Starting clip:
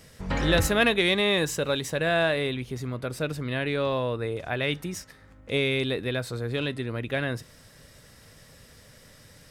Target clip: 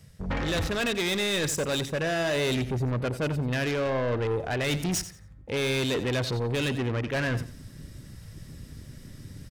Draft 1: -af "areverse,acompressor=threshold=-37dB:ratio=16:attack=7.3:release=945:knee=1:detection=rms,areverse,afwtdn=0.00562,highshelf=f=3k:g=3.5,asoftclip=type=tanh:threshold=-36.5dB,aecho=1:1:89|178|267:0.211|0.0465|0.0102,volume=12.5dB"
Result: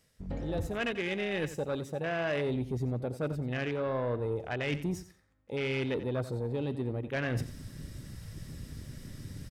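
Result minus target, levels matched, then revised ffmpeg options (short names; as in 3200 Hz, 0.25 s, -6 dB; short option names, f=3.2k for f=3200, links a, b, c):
compressor: peak gain reduction +9 dB
-af "areverse,acompressor=threshold=-27.5dB:ratio=16:attack=7.3:release=945:knee=1:detection=rms,areverse,afwtdn=0.00562,highshelf=f=3k:g=3.5,asoftclip=type=tanh:threshold=-36.5dB,aecho=1:1:89|178|267:0.211|0.0465|0.0102,volume=12.5dB"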